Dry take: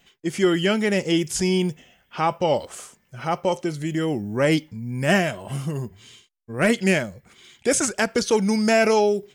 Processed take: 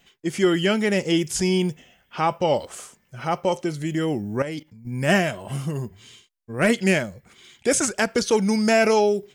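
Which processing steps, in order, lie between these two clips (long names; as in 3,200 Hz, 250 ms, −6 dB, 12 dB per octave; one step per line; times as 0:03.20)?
0:04.42–0:04.93: output level in coarse steps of 15 dB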